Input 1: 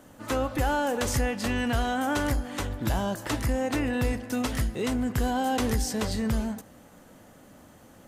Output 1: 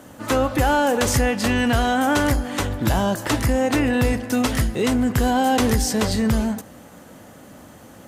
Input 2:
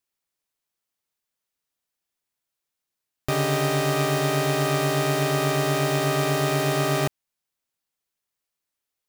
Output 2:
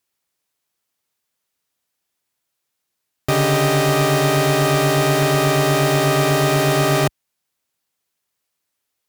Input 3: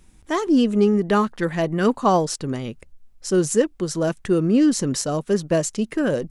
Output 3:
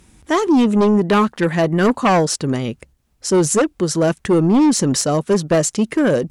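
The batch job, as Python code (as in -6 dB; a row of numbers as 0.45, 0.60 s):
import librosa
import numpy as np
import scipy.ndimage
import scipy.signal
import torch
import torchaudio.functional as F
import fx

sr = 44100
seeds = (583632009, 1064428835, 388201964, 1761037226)

y = scipy.signal.sosfilt(scipy.signal.butter(2, 54.0, 'highpass', fs=sr, output='sos'), x)
y = fx.fold_sine(y, sr, drive_db=7, ceiling_db=-6.0)
y = librosa.util.normalize(y) * 10.0 ** (-9 / 20.0)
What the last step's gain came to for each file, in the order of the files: -2.5, -3.5, -3.5 dB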